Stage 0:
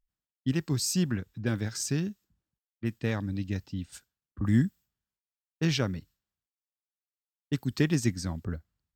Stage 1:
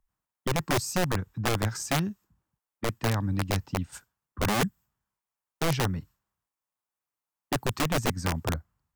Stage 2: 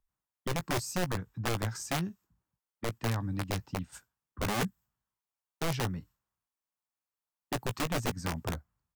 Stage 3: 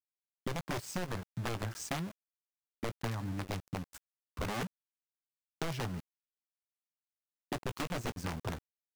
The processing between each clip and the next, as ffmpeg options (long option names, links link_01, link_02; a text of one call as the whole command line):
ffmpeg -i in.wav -filter_complex "[0:a]acrossover=split=150[link_01][link_02];[link_02]acompressor=threshold=-37dB:ratio=2.5[link_03];[link_01][link_03]amix=inputs=2:normalize=0,equalizer=frequency=125:width_type=o:width=1:gain=3,equalizer=frequency=1000:width_type=o:width=1:gain=10,equalizer=frequency=4000:width_type=o:width=1:gain=-6,aeval=exprs='(mod(15.8*val(0)+1,2)-1)/15.8':channel_layout=same,volume=4dB" out.wav
ffmpeg -i in.wav -filter_complex "[0:a]asplit=2[link_01][link_02];[link_02]adelay=17,volume=-12dB[link_03];[link_01][link_03]amix=inputs=2:normalize=0,volume=-5.5dB" out.wav
ffmpeg -i in.wav -af "highshelf=frequency=6700:gain=-6.5,acompressor=threshold=-38dB:ratio=8,aeval=exprs='val(0)*gte(abs(val(0)),0.00473)':channel_layout=same,volume=4dB" out.wav